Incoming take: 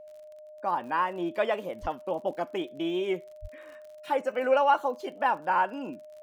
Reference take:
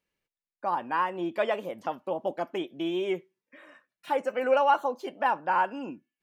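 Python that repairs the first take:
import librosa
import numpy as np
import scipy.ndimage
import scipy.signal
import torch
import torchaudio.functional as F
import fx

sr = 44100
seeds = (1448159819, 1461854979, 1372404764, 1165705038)

y = fx.fix_declick_ar(x, sr, threshold=6.5)
y = fx.notch(y, sr, hz=610.0, q=30.0)
y = fx.highpass(y, sr, hz=140.0, slope=24, at=(1.81, 1.93), fade=0.02)
y = fx.highpass(y, sr, hz=140.0, slope=24, at=(3.41, 3.53), fade=0.02)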